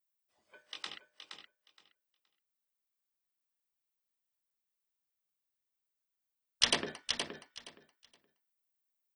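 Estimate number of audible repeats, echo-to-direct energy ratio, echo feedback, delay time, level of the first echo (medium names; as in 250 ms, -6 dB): 2, -7.0 dB, 18%, 470 ms, -7.0 dB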